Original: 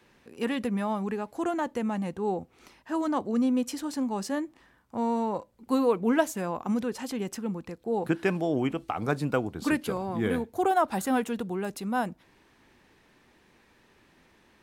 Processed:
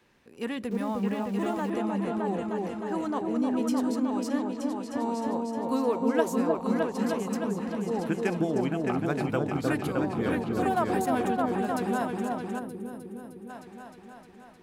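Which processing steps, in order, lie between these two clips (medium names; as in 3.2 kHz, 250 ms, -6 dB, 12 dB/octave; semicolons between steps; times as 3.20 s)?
delay with an opening low-pass 308 ms, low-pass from 750 Hz, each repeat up 2 oct, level 0 dB; 0.71–1.70 s: small samples zeroed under -41 dBFS; 12.59–13.50 s: time-frequency box 540–8500 Hz -11 dB; trim -3.5 dB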